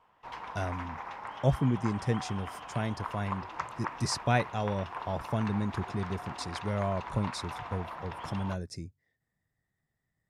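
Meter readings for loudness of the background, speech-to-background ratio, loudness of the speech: −41.0 LKFS, 7.0 dB, −34.0 LKFS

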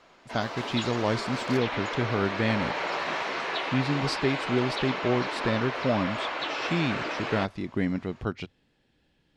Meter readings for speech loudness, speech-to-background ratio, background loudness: −29.5 LKFS, 2.0 dB, −31.5 LKFS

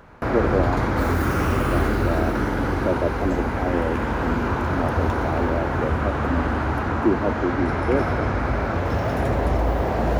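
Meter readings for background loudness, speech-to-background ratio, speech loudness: −23.5 LKFS, −4.5 dB, −28.0 LKFS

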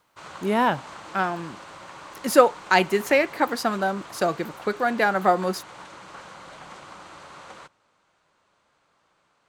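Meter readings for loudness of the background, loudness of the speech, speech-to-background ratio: −42.0 LKFS, −23.0 LKFS, 19.0 dB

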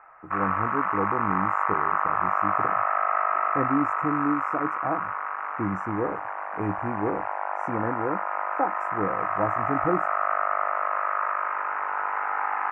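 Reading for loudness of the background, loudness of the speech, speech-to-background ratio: −27.0 LKFS, −31.5 LKFS, −4.5 dB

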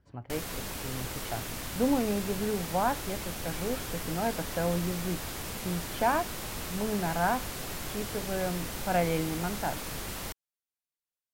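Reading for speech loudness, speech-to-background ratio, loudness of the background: −33.0 LKFS, 4.0 dB, −37.0 LKFS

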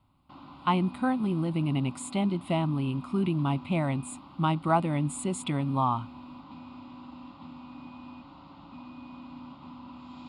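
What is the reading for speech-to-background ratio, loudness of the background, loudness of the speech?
17.0 dB, −46.0 LKFS, −29.0 LKFS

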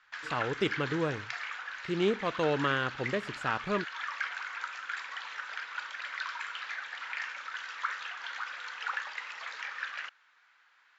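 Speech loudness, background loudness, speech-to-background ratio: −32.5 LKFS, −38.0 LKFS, 5.5 dB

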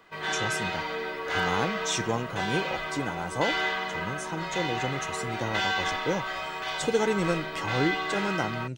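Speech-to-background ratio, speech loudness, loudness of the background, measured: −1.5 dB, −32.0 LKFS, −30.5 LKFS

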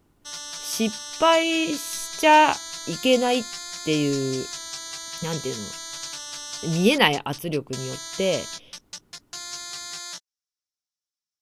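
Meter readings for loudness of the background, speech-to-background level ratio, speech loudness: −33.5 LKFS, 10.5 dB, −23.0 LKFS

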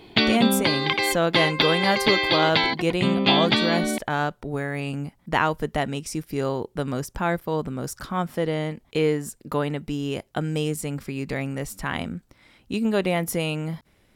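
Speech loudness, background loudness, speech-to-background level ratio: −26.5 LKFS, −22.0 LKFS, −4.5 dB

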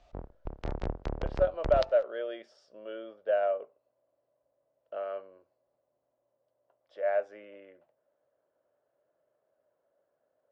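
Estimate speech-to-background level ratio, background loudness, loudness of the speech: 8.5 dB, −39.5 LKFS, −31.0 LKFS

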